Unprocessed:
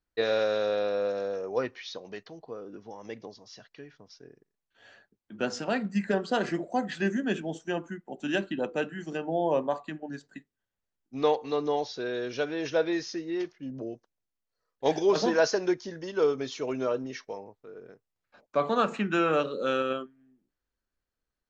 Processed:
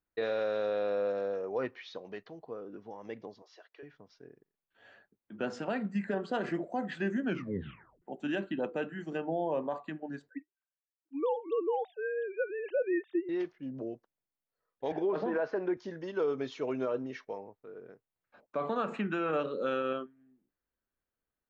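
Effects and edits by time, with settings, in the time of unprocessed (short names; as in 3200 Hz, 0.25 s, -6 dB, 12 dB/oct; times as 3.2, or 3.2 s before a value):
3.42–3.83 elliptic high-pass 340 Hz
7.25 tape stop 0.77 s
10.29–13.29 sine-wave speech
14.92–15.77 BPF 140–2000 Hz
whole clip: bell 5900 Hz -13 dB 1.3 oct; limiter -21.5 dBFS; low shelf 67 Hz -8.5 dB; gain -1.5 dB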